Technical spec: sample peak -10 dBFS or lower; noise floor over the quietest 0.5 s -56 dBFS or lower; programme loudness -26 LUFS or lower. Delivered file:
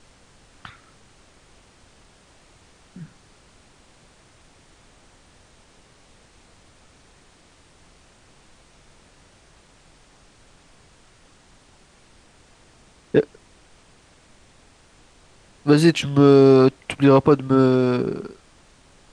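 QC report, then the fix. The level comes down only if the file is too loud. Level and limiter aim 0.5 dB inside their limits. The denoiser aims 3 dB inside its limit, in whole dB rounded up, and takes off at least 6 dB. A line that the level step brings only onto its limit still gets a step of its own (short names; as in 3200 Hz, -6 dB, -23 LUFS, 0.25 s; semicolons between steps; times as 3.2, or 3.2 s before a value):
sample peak -2.0 dBFS: fail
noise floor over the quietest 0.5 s -54 dBFS: fail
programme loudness -17.0 LUFS: fail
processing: gain -9.5 dB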